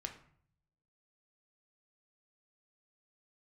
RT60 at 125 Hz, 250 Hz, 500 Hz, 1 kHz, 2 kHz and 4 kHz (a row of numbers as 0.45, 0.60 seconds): 1.1, 0.80, 0.60, 0.55, 0.50, 0.40 seconds